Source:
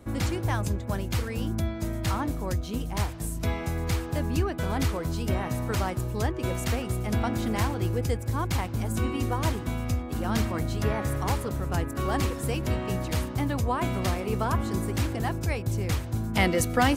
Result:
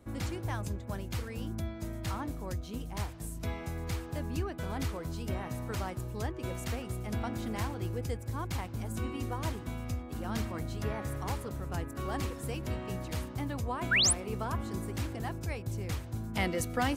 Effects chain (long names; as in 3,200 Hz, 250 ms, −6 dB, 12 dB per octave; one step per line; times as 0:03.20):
sound drawn into the spectrogram rise, 0:13.91–0:14.13, 1,300–11,000 Hz −17 dBFS
level −8 dB